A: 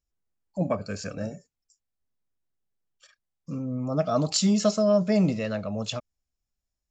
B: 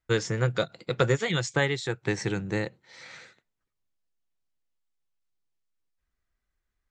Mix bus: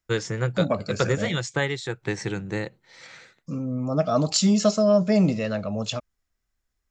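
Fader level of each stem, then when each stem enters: +2.5, 0.0 decibels; 0.00, 0.00 seconds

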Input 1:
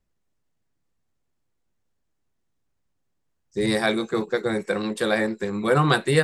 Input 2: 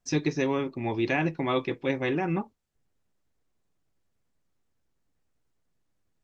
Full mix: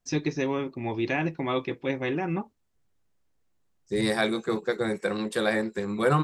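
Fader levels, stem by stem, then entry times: −3.0, −1.0 decibels; 0.35, 0.00 seconds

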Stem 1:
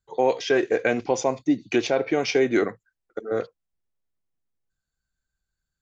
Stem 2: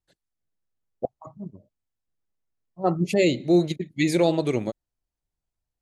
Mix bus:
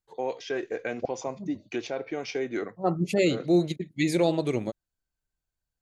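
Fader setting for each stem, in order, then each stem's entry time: −10.0, −3.0 decibels; 0.00, 0.00 seconds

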